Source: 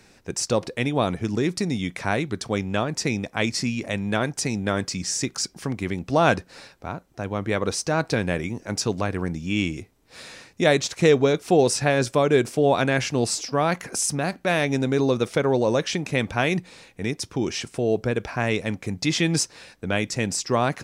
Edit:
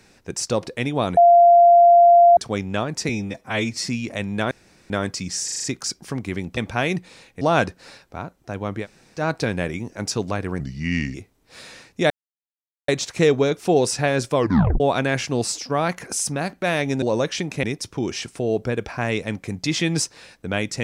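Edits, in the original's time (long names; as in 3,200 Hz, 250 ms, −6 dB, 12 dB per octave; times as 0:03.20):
0:01.17–0:02.37: beep over 692 Hz −8 dBFS
0:03.09–0:03.61: time-stretch 1.5×
0:04.25–0:04.64: fill with room tone
0:05.18: stutter 0.04 s, 6 plays
0:07.52–0:07.88: fill with room tone, crossfade 0.10 s
0:09.30–0:09.75: play speed 83%
0:10.71: splice in silence 0.78 s
0:12.18: tape stop 0.45 s
0:14.85–0:15.57: remove
0:16.18–0:17.02: move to 0:06.11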